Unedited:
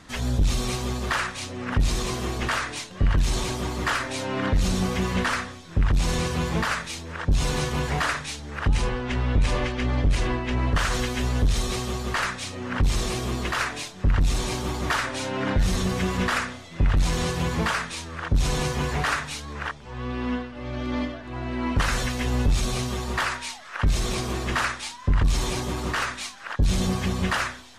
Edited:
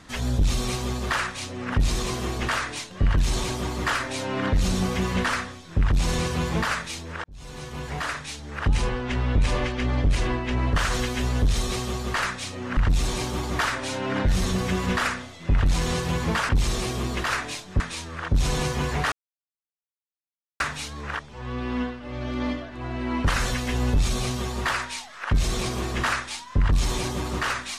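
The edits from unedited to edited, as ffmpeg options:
-filter_complex "[0:a]asplit=6[a][b][c][d][e][f];[a]atrim=end=7.24,asetpts=PTS-STARTPTS,afade=t=out:st=7.236:d=0.004:c=hsin[g];[b]atrim=start=7.24:end=12.772,asetpts=PTS-STARTPTS,afade=t=in:d=1.37[h];[c]atrim=start=14.078:end=17.802[i];[d]atrim=start=12.768:end=14.082[j];[e]atrim=start=17.798:end=19.12,asetpts=PTS-STARTPTS,afade=t=out:st=1.318:d=0.004:c=hsin,apad=pad_dur=1.48[k];[f]atrim=start=19.12,asetpts=PTS-STARTPTS,afade=t=in:d=0.004:c=hsin[l];[g][h]concat=n=2:v=0:a=1[m];[m][i]acrossfade=d=0.004:c1=hsin:c2=hsin[n];[n][j]acrossfade=d=0.004:c1=hsin:c2=hsin[o];[k][l]concat=n=2:v=0:a=1[p];[o][p]acrossfade=d=0.004:c1=hsin:c2=hsin"

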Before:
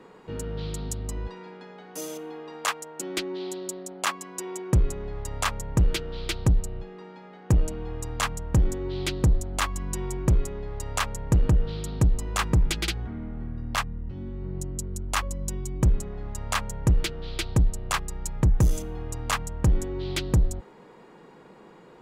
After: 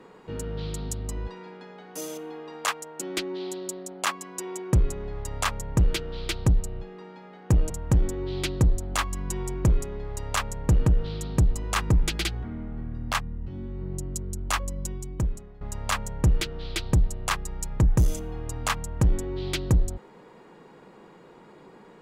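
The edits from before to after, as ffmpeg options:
-filter_complex "[0:a]asplit=3[a][b][c];[a]atrim=end=7.702[d];[b]atrim=start=8.328:end=16.24,asetpts=PTS-STARTPTS,afade=t=out:st=6.992:d=0.92:silence=0.177828[e];[c]atrim=start=16.24,asetpts=PTS-STARTPTS,afade=t=in:d=0.004:c=hsin:silence=0.177828[f];[e][f]concat=n=2:v=0:a=1[g];[d][g]acrossfade=d=0.004:c1=hsin:c2=hsin"

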